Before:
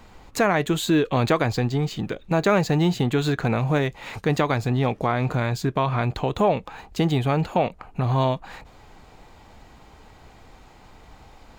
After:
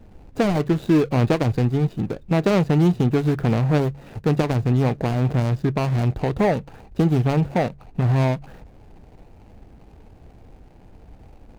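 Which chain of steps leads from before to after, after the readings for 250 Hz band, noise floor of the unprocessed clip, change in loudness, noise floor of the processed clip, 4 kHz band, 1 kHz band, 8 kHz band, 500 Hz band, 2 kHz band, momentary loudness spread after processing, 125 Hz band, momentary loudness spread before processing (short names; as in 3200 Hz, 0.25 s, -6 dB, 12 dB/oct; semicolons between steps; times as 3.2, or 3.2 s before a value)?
+3.5 dB, -50 dBFS, +2.0 dB, -48 dBFS, -5.0 dB, -3.0 dB, n/a, +0.5 dB, -3.5 dB, 6 LU, +4.0 dB, 7 LU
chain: median filter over 41 samples; bell 81 Hz +2.5 dB 2.9 oct; de-hum 70.17 Hz, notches 2; gain +2.5 dB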